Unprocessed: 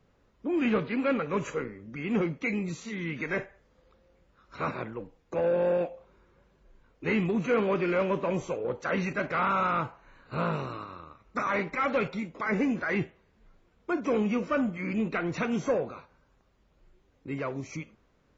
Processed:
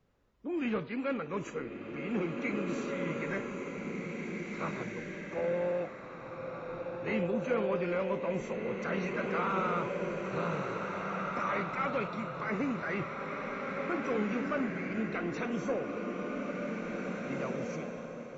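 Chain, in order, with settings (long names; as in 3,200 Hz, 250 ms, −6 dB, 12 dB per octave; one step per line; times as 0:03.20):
slow-attack reverb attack 2,120 ms, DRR 0.5 dB
level −6.5 dB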